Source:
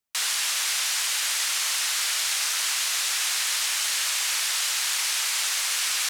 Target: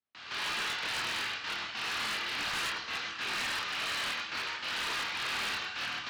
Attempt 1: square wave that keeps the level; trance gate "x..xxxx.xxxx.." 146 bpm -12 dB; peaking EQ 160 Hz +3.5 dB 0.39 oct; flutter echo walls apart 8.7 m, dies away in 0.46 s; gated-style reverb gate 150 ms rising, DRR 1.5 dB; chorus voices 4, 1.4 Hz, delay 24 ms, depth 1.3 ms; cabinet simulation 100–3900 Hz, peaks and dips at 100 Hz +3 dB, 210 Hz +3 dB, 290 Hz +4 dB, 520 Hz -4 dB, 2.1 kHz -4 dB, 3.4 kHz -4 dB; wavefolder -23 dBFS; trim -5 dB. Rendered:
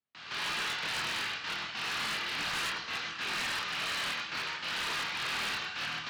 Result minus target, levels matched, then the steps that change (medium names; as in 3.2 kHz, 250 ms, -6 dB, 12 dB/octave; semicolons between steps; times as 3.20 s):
125 Hz band +3.0 dB
change: peaking EQ 160 Hz -5 dB 0.39 oct